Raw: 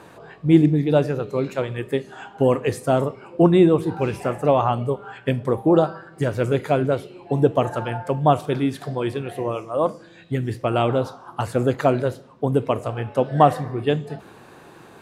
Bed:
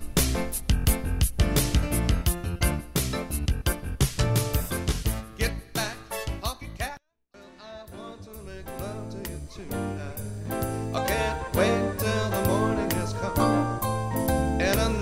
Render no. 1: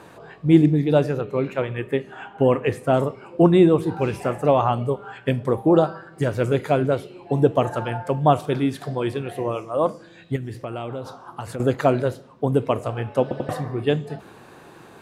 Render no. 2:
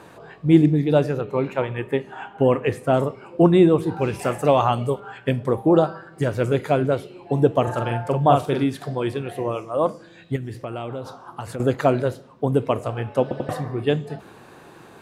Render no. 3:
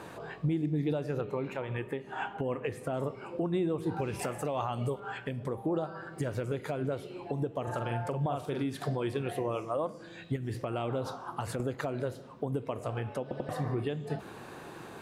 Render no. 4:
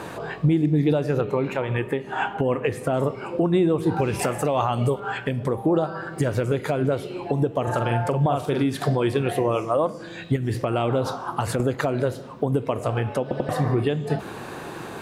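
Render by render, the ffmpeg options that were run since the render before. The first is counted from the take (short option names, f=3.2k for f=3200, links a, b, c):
-filter_complex "[0:a]asettb=1/sr,asplit=3[a][b][c];[a]atrim=end=1.214[d];[b]atrim=start=1.21:end=2.94,asetpts=PTS-STARTPTS,afade=t=in:d=0.004:c=qsin,afade=t=out:st=1.726:d=0.004:c=qsin,highshelf=f=3.5k:t=q:w=1.5:g=-8[e];[c]atrim=start=2.936[f];[d][e]acrossfade=d=0.004:c1=hsin:c2=qsin[g];[g][f]acrossfade=d=0.004:c1=qsin:c2=hsin,asettb=1/sr,asplit=3[h][i][j];[h]atrim=end=10.364[k];[i]atrim=start=10.36:end=11.6,asetpts=PTS-STARTPTS,afade=t=in:d=0.004:c=qsin,afade=t=out:st=1.236:d=0.004:c=qsin,acompressor=threshold=-28dB:ratio=4:attack=3.2:release=140:knee=1:detection=peak[l];[j]atrim=start=11.596[m];[k][l]acrossfade=d=0.004:c1=hsin:c2=qsin[n];[n][m]acrossfade=d=0.004:c1=qsin:c2=hsin,asplit=4[o][p][q][r];[o]atrim=end=13.312[s];[p]atrim=start=13.218:end=13.312[t];[q]atrim=start=13.218:end=13.312[u];[r]atrim=start=13.488[v];[s][t]acrossfade=d=0.004:c1=hsin:c2=hsin[w];[w][u]acrossfade=d=0.004:c1=hsin:c2=hsin[x];[x][v]acrossfade=d=0.004:c1=hsin:c2=hsin"
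-filter_complex "[0:a]asettb=1/sr,asplit=3[a][b][c];[a]atrim=end=1.284[d];[b]atrim=start=1.28:end=2.26,asetpts=PTS-STARTPTS,afade=t=in:d=0.004:c=qsin,afade=t=out:st=0.976:d=0.004:c=qsin,equalizer=f=890:t=o:w=0.4:g=8[e];[c]atrim=start=2.256[f];[d][e]acrossfade=d=0.004:c1=hsin:c2=qsin[g];[g][f]acrossfade=d=0.004:c1=qsin:c2=hsin,asettb=1/sr,asplit=3[h][i][j];[h]atrim=end=4.194[k];[i]atrim=start=4.19:end=5,asetpts=PTS-STARTPTS,afade=t=in:d=0.004:c=qsin,afade=t=out:st=0.806:d=0.004:c=qsin,highshelf=f=2.6k:g=9.5[l];[j]atrim=start=4.996[m];[k][l]acrossfade=d=0.004:c1=hsin:c2=qsin[n];[n][m]acrossfade=d=0.004:c1=qsin:c2=hsin,asettb=1/sr,asplit=3[o][p][q];[o]atrim=end=7.634[r];[p]atrim=start=7.63:end=8.64,asetpts=PTS-STARTPTS,afade=t=in:d=0.004:c=qsin,afade=t=out:st=1.006:d=0.004:c=qsin,asplit=2[s][t];[t]adelay=43,volume=-4dB[u];[s][u]amix=inputs=2:normalize=0,atrim=end_sample=44541[v];[q]atrim=start=8.636[w];[r][v]acrossfade=d=0.004:c1=hsin:c2=qsin[x];[x][w]acrossfade=d=0.004:c1=qsin:c2=hsin"
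-af "acompressor=threshold=-23dB:ratio=6,alimiter=limit=-22dB:level=0:latency=1:release=281"
-af "volume=10.5dB"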